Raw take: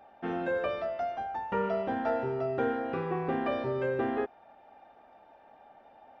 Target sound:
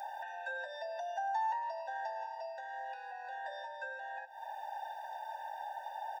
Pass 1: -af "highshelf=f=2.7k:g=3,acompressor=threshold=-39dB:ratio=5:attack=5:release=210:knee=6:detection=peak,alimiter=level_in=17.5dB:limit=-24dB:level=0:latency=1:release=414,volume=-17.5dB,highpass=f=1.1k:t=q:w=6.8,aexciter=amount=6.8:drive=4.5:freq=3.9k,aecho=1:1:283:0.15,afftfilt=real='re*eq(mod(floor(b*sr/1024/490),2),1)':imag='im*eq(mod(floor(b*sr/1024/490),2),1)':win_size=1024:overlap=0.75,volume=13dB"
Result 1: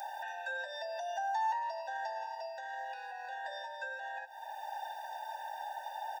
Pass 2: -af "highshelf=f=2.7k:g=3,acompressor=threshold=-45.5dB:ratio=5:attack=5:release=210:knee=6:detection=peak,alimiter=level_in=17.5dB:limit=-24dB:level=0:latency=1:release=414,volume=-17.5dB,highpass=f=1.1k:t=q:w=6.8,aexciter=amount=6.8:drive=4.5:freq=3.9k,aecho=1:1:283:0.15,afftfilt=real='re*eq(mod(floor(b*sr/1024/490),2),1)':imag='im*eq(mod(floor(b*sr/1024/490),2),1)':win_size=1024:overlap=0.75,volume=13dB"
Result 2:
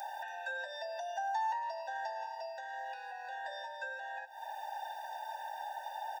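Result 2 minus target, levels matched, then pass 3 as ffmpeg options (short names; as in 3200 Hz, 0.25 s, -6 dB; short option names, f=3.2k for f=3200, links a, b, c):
4000 Hz band +4.5 dB
-af "highshelf=f=2.7k:g=-5.5,acompressor=threshold=-45.5dB:ratio=5:attack=5:release=210:knee=6:detection=peak,alimiter=level_in=17.5dB:limit=-24dB:level=0:latency=1:release=414,volume=-17.5dB,highpass=f=1.1k:t=q:w=6.8,aexciter=amount=6.8:drive=4.5:freq=3.9k,aecho=1:1:283:0.15,afftfilt=real='re*eq(mod(floor(b*sr/1024/490),2),1)':imag='im*eq(mod(floor(b*sr/1024/490),2),1)':win_size=1024:overlap=0.75,volume=13dB"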